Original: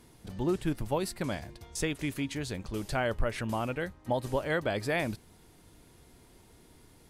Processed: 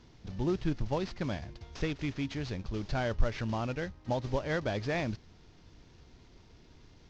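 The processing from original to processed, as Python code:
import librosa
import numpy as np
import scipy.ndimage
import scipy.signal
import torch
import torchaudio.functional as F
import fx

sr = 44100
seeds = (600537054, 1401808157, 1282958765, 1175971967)

y = fx.cvsd(x, sr, bps=32000)
y = fx.low_shelf(y, sr, hz=160.0, db=7.5)
y = F.gain(torch.from_numpy(y), -3.0).numpy()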